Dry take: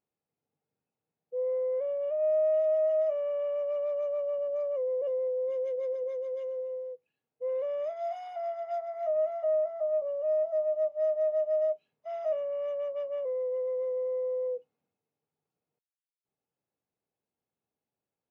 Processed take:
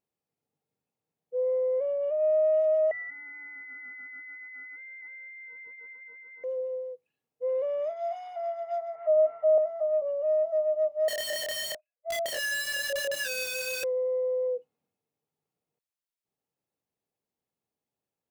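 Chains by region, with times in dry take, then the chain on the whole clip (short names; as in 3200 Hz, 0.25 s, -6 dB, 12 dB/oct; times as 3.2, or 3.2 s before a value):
2.91–6.44 HPF 1200 Hz + inverted band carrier 2600 Hz
8.95–9.58 LPF 2400 Hz 24 dB/oct + comb 6.7 ms, depth 81%
11.08–13.84 sine-wave speech + wrapped overs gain 30.5 dB + doubler 27 ms -2 dB
whole clip: notch 1500 Hz, Q 18; dynamic EQ 370 Hz, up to +4 dB, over -39 dBFS, Q 0.85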